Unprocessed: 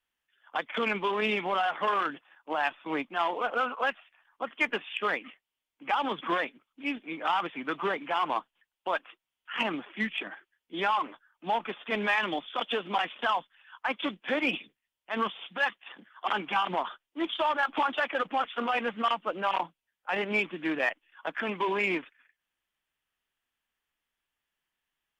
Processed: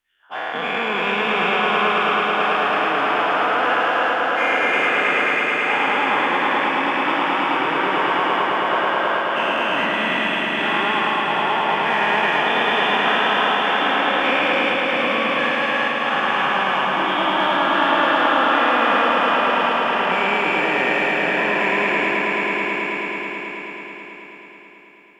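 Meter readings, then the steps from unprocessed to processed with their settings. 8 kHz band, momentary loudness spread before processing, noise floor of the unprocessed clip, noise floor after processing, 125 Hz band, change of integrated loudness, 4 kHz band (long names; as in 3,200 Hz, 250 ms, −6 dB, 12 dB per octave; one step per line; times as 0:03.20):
can't be measured, 9 LU, below −85 dBFS, −39 dBFS, +12.0 dB, +12.5 dB, +13.5 dB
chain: every bin's largest magnitude spread in time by 480 ms
echo that builds up and dies away 108 ms, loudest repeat 5, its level −6.5 dB
level −2.5 dB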